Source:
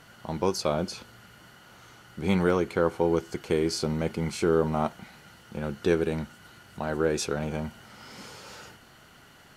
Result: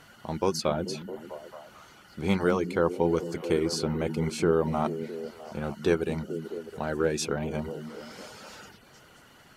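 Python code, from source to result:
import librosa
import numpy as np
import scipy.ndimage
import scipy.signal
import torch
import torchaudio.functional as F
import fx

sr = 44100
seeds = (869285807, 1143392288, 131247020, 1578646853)

y = fx.hum_notches(x, sr, base_hz=60, count=3)
y = fx.dereverb_blind(y, sr, rt60_s=0.57)
y = fx.echo_stepped(y, sr, ms=219, hz=190.0, octaves=0.7, feedback_pct=70, wet_db=-6)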